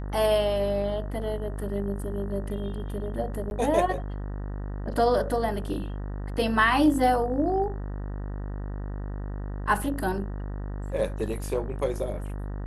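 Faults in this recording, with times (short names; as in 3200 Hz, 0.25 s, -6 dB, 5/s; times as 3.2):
buzz 50 Hz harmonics 38 -33 dBFS
3.5–3.51 gap 11 ms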